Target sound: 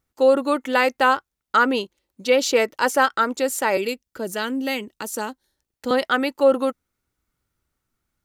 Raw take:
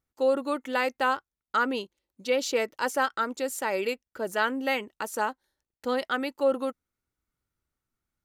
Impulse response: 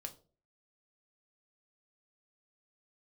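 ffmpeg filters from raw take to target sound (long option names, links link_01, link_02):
-filter_complex "[0:a]asettb=1/sr,asplit=3[link_01][link_02][link_03];[link_01]atrim=end=3.774[link_04];[link_02]atrim=start=3.77:end=5.91,asetpts=PTS-STARTPTS,afade=type=in:duration=0.004:curve=qsin,afade=type=out:start_time=2.136:duration=0.004:curve=qsin,acrossover=split=380|3000[link_05][link_06][link_07];[link_06]acompressor=threshold=-56dB:ratio=1.5[link_08];[link_05][link_08][link_07]amix=inputs=3:normalize=0[link_09];[link_03]atrim=start=5.906[link_10];[link_04][link_09]acrossfade=duration=0.004:curve1=hsin:curve2=qsin[link_11];[link_11][link_10]acrossfade=duration=0.004:curve1=qsin:curve2=hsin,volume=8dB"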